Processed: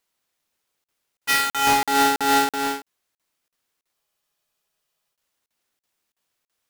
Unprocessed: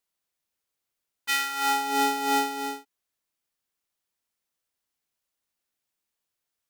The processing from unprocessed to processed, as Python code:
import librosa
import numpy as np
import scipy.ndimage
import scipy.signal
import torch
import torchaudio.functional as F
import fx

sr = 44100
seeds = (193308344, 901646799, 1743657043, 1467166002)

p1 = fx.halfwave_hold(x, sr)
p2 = fx.low_shelf(p1, sr, hz=170.0, db=-4.0)
p3 = 10.0 ** (-27.5 / 20.0) * np.tanh(p2 / 10.0 ** (-27.5 / 20.0))
p4 = p2 + F.gain(torch.from_numpy(p3), -3.5).numpy()
p5 = fx.buffer_crackle(p4, sr, first_s=0.84, period_s=0.33, block=2048, kind='zero')
y = fx.spec_freeze(p5, sr, seeds[0], at_s=3.94, hold_s=1.21)